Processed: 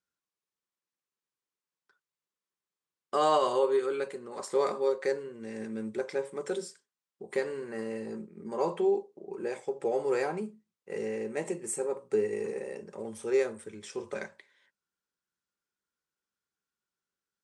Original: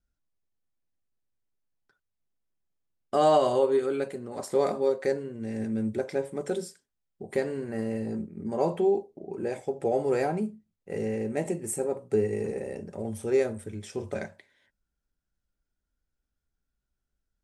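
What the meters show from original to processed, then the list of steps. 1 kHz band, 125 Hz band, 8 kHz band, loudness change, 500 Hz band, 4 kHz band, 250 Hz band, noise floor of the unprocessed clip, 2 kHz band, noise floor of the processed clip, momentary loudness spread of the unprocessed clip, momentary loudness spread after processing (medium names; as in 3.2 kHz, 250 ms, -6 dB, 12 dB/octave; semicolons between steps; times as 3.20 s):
-2.0 dB, -12.0 dB, -1.5 dB, -3.0 dB, -3.0 dB, 0.0 dB, -6.0 dB, -84 dBFS, 0.0 dB, under -85 dBFS, 12 LU, 14 LU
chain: cabinet simulation 270–9400 Hz, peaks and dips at 270 Hz -9 dB, 670 Hz -10 dB, 1.1 kHz +5 dB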